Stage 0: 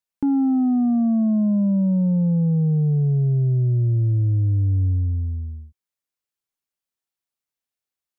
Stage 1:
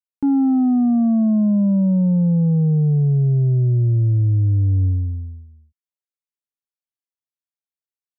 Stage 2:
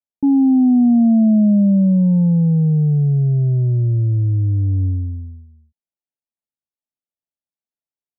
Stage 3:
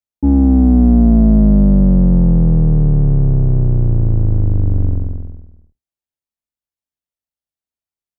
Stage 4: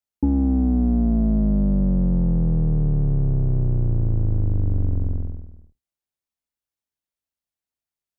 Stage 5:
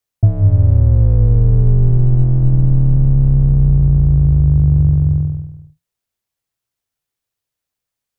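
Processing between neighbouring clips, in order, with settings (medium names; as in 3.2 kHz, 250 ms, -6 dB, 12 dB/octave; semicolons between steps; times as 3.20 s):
upward expansion 2.5:1, over -29 dBFS; trim +3 dB
rippled Chebyshev low-pass 900 Hz, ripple 6 dB; trim +4 dB
octave divider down 2 oct, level +2 dB
compression 4:1, threshold -18 dBFS, peak gain reduction 10 dB
frequency shift -170 Hz; trim +8.5 dB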